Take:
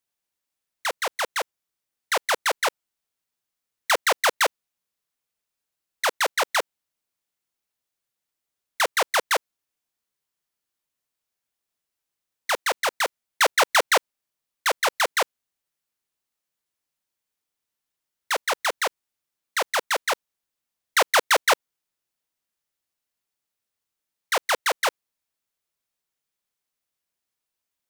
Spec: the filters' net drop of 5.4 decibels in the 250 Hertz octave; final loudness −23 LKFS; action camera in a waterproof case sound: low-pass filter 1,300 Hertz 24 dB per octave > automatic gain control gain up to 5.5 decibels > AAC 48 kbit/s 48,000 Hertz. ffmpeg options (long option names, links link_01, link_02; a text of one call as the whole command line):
ffmpeg -i in.wav -af "lowpass=frequency=1300:width=0.5412,lowpass=frequency=1300:width=1.3066,equalizer=frequency=250:width_type=o:gain=-9,dynaudnorm=maxgain=5.5dB,volume=2.5dB" -ar 48000 -c:a aac -b:a 48k out.aac